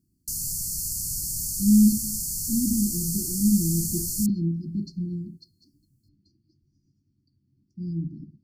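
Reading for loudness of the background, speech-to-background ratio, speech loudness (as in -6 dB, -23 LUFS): -27.5 LUFS, 2.0 dB, -25.5 LUFS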